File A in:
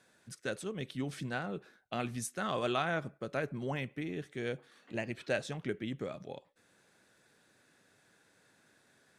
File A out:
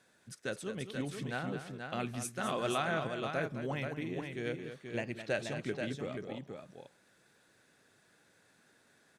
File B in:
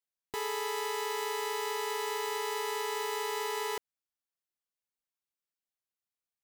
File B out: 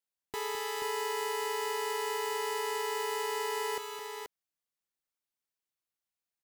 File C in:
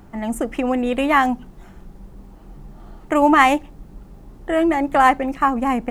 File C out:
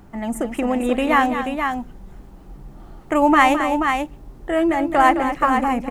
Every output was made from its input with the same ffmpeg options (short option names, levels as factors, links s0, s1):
-af "aecho=1:1:213|482:0.316|0.501,volume=0.891"